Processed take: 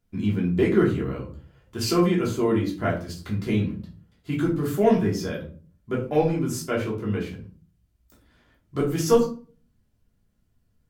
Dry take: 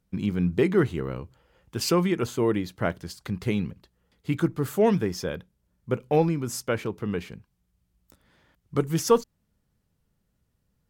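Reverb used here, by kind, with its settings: simulated room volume 270 m³, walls furnished, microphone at 3.1 m; trim -5 dB

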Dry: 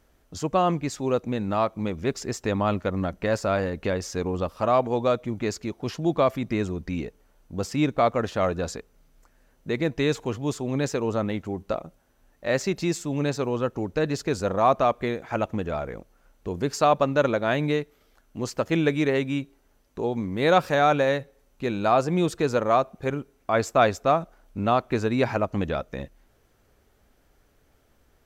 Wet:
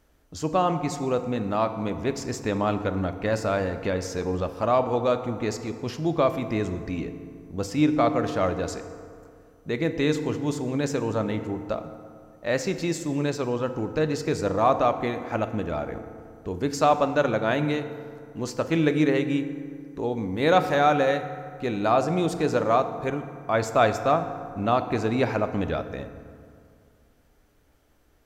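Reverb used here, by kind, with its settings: FDN reverb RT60 2.3 s, low-frequency decay 1.1×, high-frequency decay 0.5×, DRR 8.5 dB; trim -1 dB

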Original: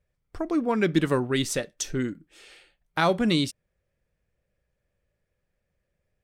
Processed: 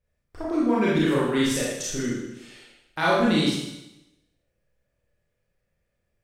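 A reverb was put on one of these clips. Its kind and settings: Schroeder reverb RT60 0.93 s, combs from 26 ms, DRR -7 dB; trim -5.5 dB

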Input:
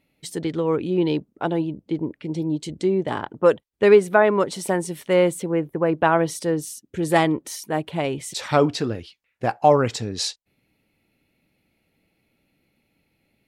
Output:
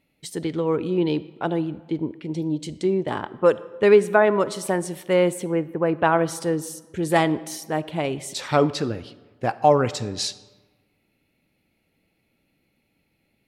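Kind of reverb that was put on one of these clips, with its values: algorithmic reverb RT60 1.3 s, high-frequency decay 0.7×, pre-delay 5 ms, DRR 16.5 dB; trim -1 dB

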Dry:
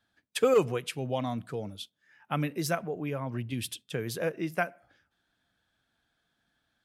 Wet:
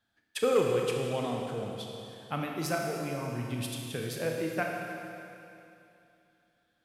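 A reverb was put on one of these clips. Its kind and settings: Schroeder reverb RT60 2.8 s, combs from 25 ms, DRR 0 dB; trim -3.5 dB

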